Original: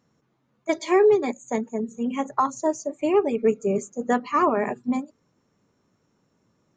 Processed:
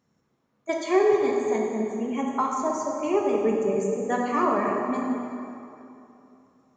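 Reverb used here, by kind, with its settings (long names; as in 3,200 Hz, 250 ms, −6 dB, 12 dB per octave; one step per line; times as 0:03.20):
dense smooth reverb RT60 2.9 s, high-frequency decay 0.7×, DRR −1 dB
level −4.5 dB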